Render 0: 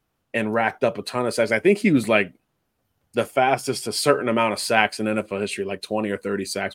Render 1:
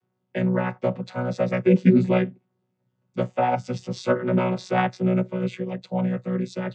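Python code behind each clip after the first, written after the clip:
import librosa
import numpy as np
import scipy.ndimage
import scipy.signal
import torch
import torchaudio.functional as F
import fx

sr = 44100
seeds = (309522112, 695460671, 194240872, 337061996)

y = fx.chord_vocoder(x, sr, chord='bare fifth', root=47)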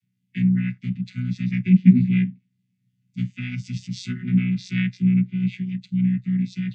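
y = scipy.signal.sosfilt(scipy.signal.ellip(3, 1.0, 50, [220.0, 2100.0], 'bandstop', fs=sr, output='sos'), x)
y = fx.hpss(y, sr, part='harmonic', gain_db=6)
y = fx.env_lowpass_down(y, sr, base_hz=2500.0, full_db=-15.5)
y = F.gain(torch.from_numpy(y), -1.0).numpy()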